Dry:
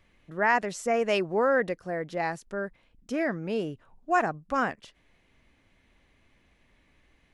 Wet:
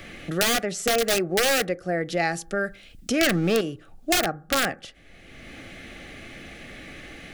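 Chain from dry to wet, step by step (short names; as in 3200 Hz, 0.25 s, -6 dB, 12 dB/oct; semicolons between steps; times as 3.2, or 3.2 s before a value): 3.21–3.61 sample leveller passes 3; wrapped overs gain 18.5 dB; Butterworth band-stop 980 Hz, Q 3.4; reverb RT60 0.35 s, pre-delay 3 ms, DRR 16.5 dB; three-band squash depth 70%; gain +4 dB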